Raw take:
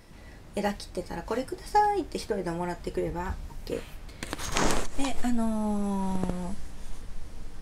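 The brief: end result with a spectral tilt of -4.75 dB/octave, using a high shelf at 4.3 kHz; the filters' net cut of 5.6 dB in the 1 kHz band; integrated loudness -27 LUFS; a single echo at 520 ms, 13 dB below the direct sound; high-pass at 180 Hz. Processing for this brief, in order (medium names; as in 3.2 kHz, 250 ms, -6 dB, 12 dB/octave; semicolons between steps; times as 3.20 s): high-pass 180 Hz; peaking EQ 1 kHz -7 dB; treble shelf 4.3 kHz -4 dB; delay 520 ms -13 dB; trim +6.5 dB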